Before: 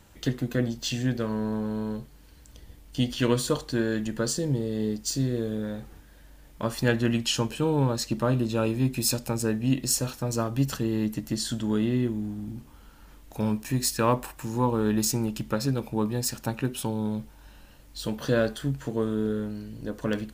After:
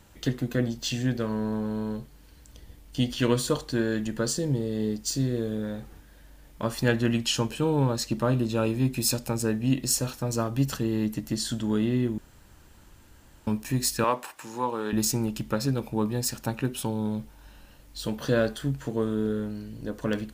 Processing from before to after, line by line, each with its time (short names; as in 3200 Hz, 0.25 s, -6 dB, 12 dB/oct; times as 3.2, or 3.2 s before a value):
12.18–13.47 room tone
14.04–14.93 weighting filter A